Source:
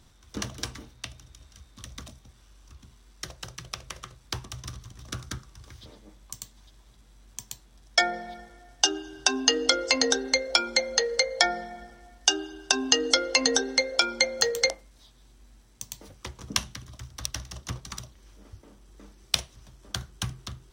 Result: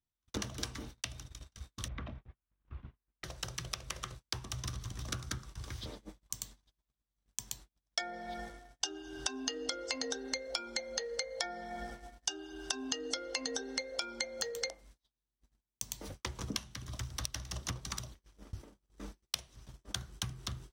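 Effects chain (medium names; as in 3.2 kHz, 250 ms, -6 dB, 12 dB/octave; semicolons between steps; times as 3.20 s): gate -49 dBFS, range -41 dB; compression 6:1, threshold -40 dBFS, peak gain reduction 22.5 dB; 1.88–3.24 s: low-pass 2.5 kHz 24 dB/octave; trim +4.5 dB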